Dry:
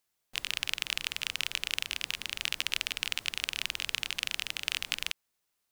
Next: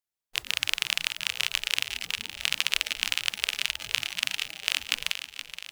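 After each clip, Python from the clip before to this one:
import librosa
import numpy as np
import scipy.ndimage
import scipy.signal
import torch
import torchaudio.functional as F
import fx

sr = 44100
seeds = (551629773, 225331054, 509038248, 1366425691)

y = fx.noise_reduce_blind(x, sr, reduce_db=17)
y = fx.echo_feedback(y, sr, ms=472, feedback_pct=56, wet_db=-11)
y = y * librosa.db_to_amplitude(5.5)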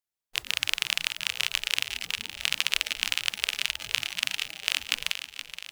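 y = x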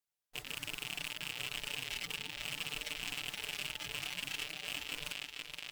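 y = x + 0.65 * np.pad(x, (int(6.8 * sr / 1000.0), 0))[:len(x)]
y = fx.tube_stage(y, sr, drive_db=27.0, bias=0.25)
y = y * librosa.db_to_amplitude(-2.5)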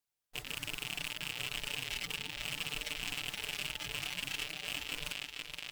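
y = fx.low_shelf(x, sr, hz=120.0, db=4.5)
y = y * librosa.db_to_amplitude(1.5)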